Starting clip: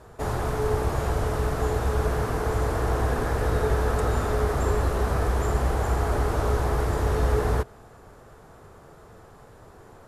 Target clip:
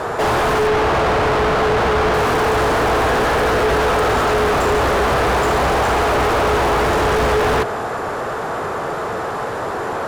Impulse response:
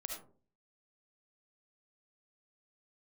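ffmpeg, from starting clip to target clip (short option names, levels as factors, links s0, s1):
-filter_complex "[0:a]asettb=1/sr,asplit=3[s0][s1][s2];[s0]atrim=end=0.674[s3];[s1]atrim=start=0.67:end=2.14,asetpts=PTS-STARTPTS,afade=t=in:d=0.004:c=qsin,afade=t=out:st=1.466:d=0.004:c=qsin,bass=f=250:g=0,treble=f=4000:g=-14[s4];[s2]atrim=start=2.136[s5];[s3][s4]acrossfade=d=0.004:c1=hsin:c2=qsin[s6];[s6][s5]acrossfade=d=0.004:c1=qsin:c2=hsin,asplit=2[s7][s8];[s8]highpass=f=720:p=1,volume=79.4,asoftclip=type=tanh:threshold=0.299[s9];[s7][s9]amix=inputs=2:normalize=0,lowpass=f=2000:p=1,volume=0.501,volume=1.19"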